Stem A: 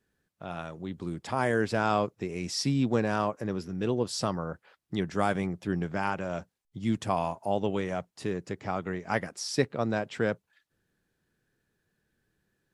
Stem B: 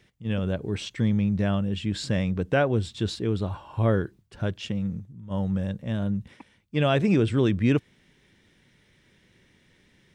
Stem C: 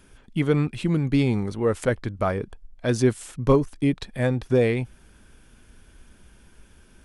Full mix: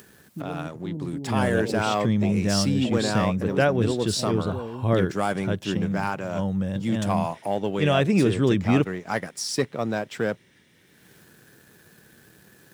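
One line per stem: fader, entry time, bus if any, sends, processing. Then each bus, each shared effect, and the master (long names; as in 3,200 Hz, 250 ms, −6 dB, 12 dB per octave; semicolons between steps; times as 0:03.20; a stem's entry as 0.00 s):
−1.0 dB, 0.00 s, no send, upward compression, threshold −32 dBFS; leveller curve on the samples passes 1
+1.5 dB, 1.05 s, no send, no processing
−7.0 dB, 0.00 s, no send, brickwall limiter −17 dBFS, peak gain reduction 10 dB; Chebyshev low-pass with heavy ripple 970 Hz, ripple 3 dB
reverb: not used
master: high-pass filter 99 Hz; high-shelf EQ 9,500 Hz +9.5 dB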